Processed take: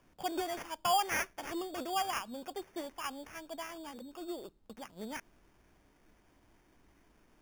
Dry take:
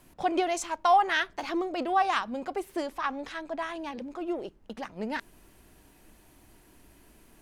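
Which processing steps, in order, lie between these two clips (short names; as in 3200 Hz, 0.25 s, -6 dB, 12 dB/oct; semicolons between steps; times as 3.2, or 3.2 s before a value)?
0.82–1.95 high shelf 2000 Hz +6.5 dB; sample-and-hold 11×; gain -9 dB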